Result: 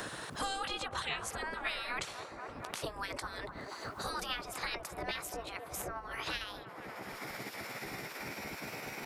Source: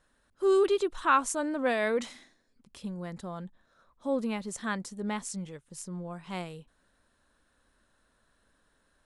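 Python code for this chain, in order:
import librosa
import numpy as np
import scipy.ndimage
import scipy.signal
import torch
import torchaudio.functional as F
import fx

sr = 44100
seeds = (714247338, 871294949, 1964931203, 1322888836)

p1 = fx.pitch_glide(x, sr, semitones=6.0, runs='starting unshifted')
p2 = fx.tilt_eq(p1, sr, slope=-3.0)
p3 = fx.spec_gate(p2, sr, threshold_db=-25, keep='weak')
p4 = p3 + fx.echo_wet_bandpass(p3, sr, ms=239, feedback_pct=54, hz=640.0, wet_db=-10.5, dry=0)
p5 = fx.band_squash(p4, sr, depth_pct=100)
y = p5 * librosa.db_to_amplitude(12.0)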